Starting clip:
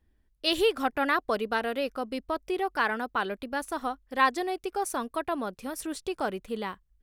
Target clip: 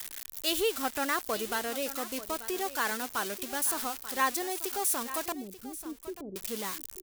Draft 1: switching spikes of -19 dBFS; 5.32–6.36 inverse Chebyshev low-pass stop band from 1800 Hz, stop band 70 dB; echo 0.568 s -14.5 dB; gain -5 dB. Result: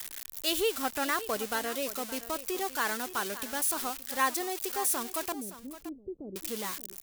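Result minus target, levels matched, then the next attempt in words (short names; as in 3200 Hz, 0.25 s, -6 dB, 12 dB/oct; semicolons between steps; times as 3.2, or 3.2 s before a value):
echo 0.319 s early
switching spikes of -19 dBFS; 5.32–6.36 inverse Chebyshev low-pass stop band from 1800 Hz, stop band 70 dB; echo 0.887 s -14.5 dB; gain -5 dB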